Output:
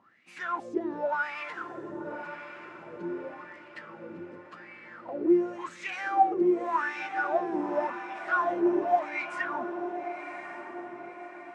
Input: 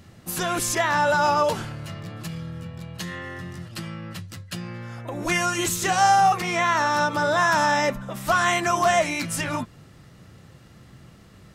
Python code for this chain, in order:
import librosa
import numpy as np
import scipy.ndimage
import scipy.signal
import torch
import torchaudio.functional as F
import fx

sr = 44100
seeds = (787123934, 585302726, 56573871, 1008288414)

p1 = scipy.signal.sosfilt(scipy.signal.butter(4, 8900.0, 'lowpass', fs=sr, output='sos'), x)
p2 = fx.peak_eq(p1, sr, hz=270.0, db=13.0, octaves=1.2)
p3 = 10.0 ** (-18.5 / 20.0) * (np.abs((p2 / 10.0 ** (-18.5 / 20.0) + 3.0) % 4.0 - 2.0) - 1.0)
p4 = p2 + (p3 * 10.0 ** (-3.5 / 20.0))
p5 = fx.wah_lfo(p4, sr, hz=0.89, low_hz=350.0, high_hz=2400.0, q=9.5)
y = p5 + fx.echo_diffused(p5, sr, ms=1103, feedback_pct=47, wet_db=-9.0, dry=0)